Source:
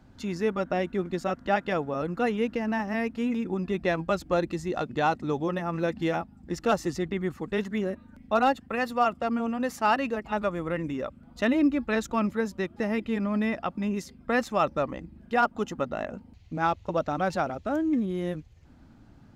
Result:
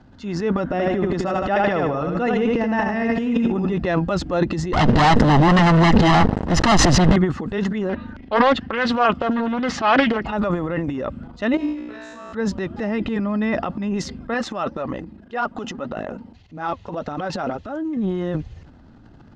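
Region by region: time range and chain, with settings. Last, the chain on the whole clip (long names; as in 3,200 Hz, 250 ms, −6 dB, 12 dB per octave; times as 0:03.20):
0:00.64–0:03.78: parametric band 4,100 Hz −3 dB 0.37 octaves + repeating echo 78 ms, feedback 34%, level −4.5 dB
0:04.73–0:07.16: lower of the sound and its delayed copy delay 1 ms + leveller curve on the samples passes 5
0:07.89–0:10.26: low-pass filter 3,500 Hz + high-shelf EQ 2,000 Hz +11.5 dB + highs frequency-modulated by the lows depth 0.39 ms
0:11.57–0:12.33: high-shelf EQ 5,100 Hz +11.5 dB + tuned comb filter 60 Hz, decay 1.6 s, mix 100%
0:14.34–0:17.97: low-shelf EQ 91 Hz −11.5 dB + flanger 1.8 Hz, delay 0.5 ms, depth 4.9 ms, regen +60%
whole clip: transient designer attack −4 dB, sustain +12 dB; Bessel low-pass filter 4,600 Hz, order 4; notch filter 2,300 Hz, Q 9.8; level +5 dB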